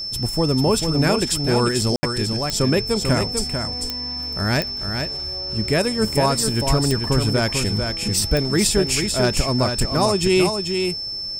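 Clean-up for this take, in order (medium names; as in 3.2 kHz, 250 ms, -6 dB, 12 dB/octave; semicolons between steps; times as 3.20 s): de-click; band-stop 5.3 kHz, Q 30; room tone fill 1.96–2.03 s; inverse comb 444 ms -6 dB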